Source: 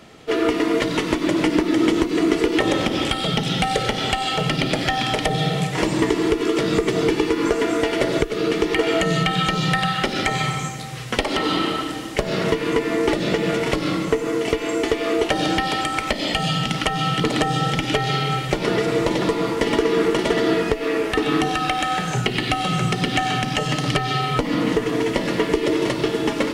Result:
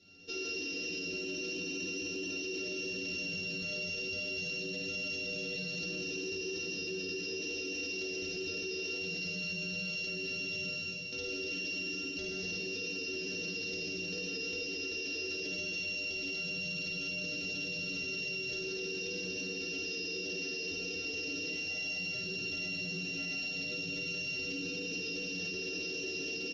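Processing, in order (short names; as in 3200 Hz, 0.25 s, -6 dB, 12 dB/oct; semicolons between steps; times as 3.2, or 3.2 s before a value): sample sorter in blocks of 32 samples; metallic resonator 89 Hz, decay 0.38 s, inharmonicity 0.008; early reflections 53 ms -5 dB, 73 ms -9.5 dB; non-linear reverb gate 0.26 s rising, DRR 0 dB; flange 0.4 Hz, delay 9 ms, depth 4.7 ms, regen -68%; EQ curve 140 Hz 0 dB, 440 Hz +5 dB, 1100 Hz -25 dB, 1700 Hz -9 dB, 3600 Hz +7 dB, 6000 Hz +14 dB, 8500 Hz -30 dB; limiter -26 dBFS, peak gain reduction 12 dB; gain -4 dB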